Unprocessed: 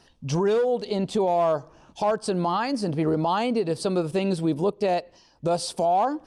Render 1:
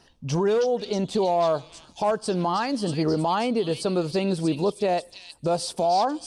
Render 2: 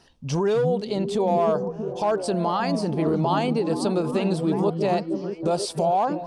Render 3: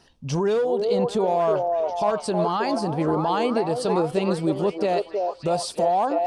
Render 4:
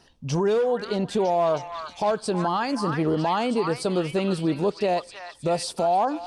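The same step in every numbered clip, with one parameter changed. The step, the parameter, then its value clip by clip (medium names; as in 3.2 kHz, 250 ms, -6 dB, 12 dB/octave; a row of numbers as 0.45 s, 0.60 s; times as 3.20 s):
repeats whose band climbs or falls, band-pass from: 4.1 kHz, 170 Hz, 550 Hz, 1.5 kHz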